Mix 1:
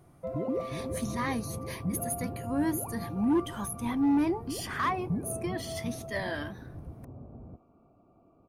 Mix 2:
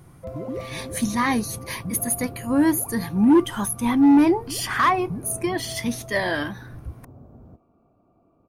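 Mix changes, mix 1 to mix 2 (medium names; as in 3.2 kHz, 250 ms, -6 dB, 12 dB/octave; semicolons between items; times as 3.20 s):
speech +10.5 dB; second sound: remove low-pass 1.1 kHz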